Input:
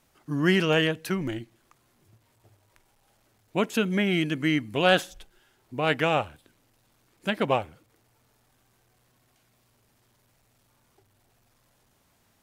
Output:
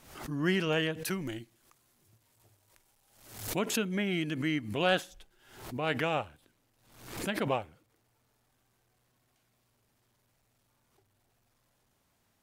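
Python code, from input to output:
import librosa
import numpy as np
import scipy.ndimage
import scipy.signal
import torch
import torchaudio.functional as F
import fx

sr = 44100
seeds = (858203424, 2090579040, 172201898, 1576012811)

y = fx.peak_eq(x, sr, hz=13000.0, db=9.0, octaves=2.3, at=(1.05, 3.59))
y = fx.pre_swell(y, sr, db_per_s=81.0)
y = y * librosa.db_to_amplitude(-7.0)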